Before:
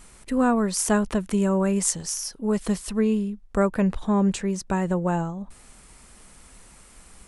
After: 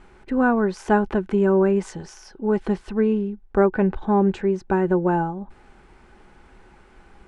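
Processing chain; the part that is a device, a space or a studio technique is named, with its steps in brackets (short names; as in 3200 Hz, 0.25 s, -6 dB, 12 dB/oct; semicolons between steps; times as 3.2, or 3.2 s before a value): inside a cardboard box (LPF 2600 Hz 12 dB/oct; small resonant body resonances 370/820/1500 Hz, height 11 dB, ringing for 45 ms)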